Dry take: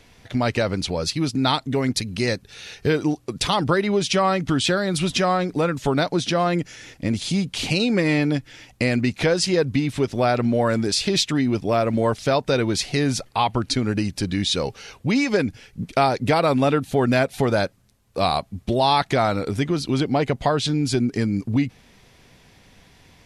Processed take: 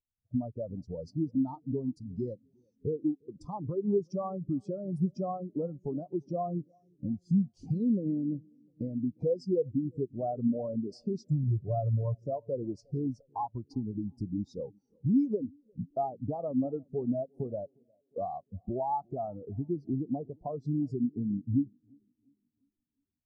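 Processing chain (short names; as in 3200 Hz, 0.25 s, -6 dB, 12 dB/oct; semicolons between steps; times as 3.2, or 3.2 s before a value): band shelf 2400 Hz -14 dB; compressor 4:1, threshold -27 dBFS, peak gain reduction 11 dB; 11.27–12.24 graphic EQ 125/250/8000 Hz +9/-8/+6 dB; tape echo 0.354 s, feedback 80%, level -12 dB, low-pass 1000 Hz; spectral expander 2.5:1; gain -3.5 dB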